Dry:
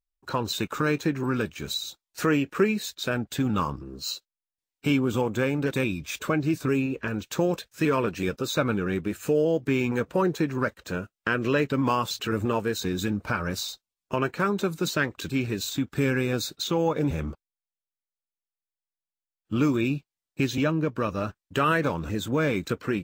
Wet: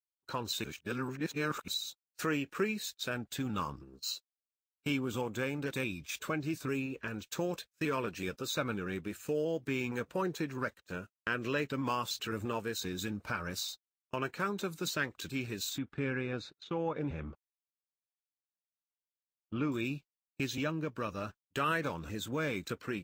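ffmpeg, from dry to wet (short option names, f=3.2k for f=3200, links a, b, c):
-filter_complex "[0:a]asettb=1/sr,asplit=3[a][b][c];[a]atrim=end=15.784[d];[b]atrim=start=15.78:end=19.72,asetpts=PTS-STARTPTS,afade=t=in:d=0.004:c=qsin,afade=t=out:st=3.936:d=0.004:c=qsin,lowpass=2.5k[e];[c]atrim=start=19.716[f];[d][e]acrossfade=d=0.004:c1=hsin:c2=qsin[g];[g][f]acrossfade=d=0.004:c1=qsin:c2=hsin,asplit=3[h][i][j];[h]atrim=end=0.642[k];[i]atrim=start=0.638:end=1.682,asetpts=PTS-STARTPTS,areverse[l];[j]atrim=start=1.678[m];[k][l]acrossfade=d=0.004:c1=hsin:c2=hsin[n];[n][m]acrossfade=d=0.004:c1=hsin:c2=hsin,agate=range=-23dB:threshold=-38dB:ratio=16:detection=peak,tiltshelf=f=1.3k:g=-3,volume=-8dB"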